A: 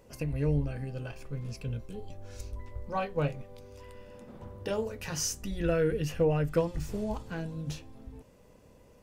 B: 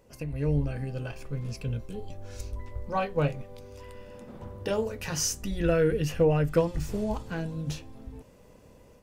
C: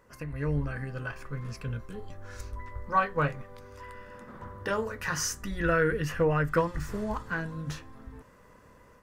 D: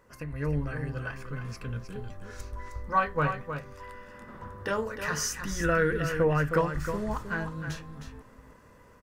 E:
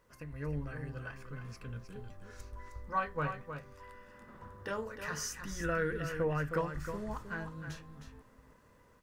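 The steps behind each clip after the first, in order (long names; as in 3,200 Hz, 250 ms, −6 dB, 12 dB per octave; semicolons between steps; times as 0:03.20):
automatic gain control gain up to 6 dB; level −2.5 dB
flat-topped bell 1,400 Hz +12 dB 1.2 octaves; level −3 dB
single-tap delay 312 ms −8.5 dB
background noise pink −70 dBFS; level −8 dB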